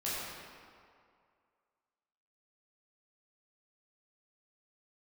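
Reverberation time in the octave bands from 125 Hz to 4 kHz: 1.9 s, 2.0 s, 2.2 s, 2.3 s, 1.8 s, 1.4 s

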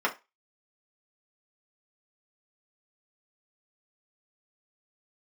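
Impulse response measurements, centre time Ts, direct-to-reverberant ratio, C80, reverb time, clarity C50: 11 ms, -3.0 dB, 23.5 dB, 0.25 s, 15.5 dB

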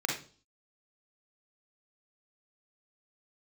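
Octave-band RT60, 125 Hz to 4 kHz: 0.50 s, 0.55 s, 0.45 s, 0.35 s, 0.35 s, 0.45 s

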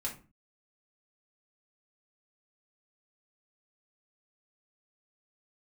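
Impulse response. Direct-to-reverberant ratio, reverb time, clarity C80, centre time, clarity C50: -4.5 dB, 0.35 s, 16.5 dB, 19 ms, 10.5 dB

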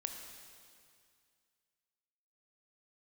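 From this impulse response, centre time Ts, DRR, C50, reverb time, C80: 53 ms, 4.0 dB, 5.0 dB, 2.2 s, 6.0 dB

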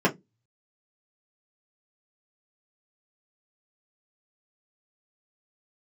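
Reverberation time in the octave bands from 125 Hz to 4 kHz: 0.30 s, 0.30 s, 0.20 s, 0.15 s, 0.10 s, 0.10 s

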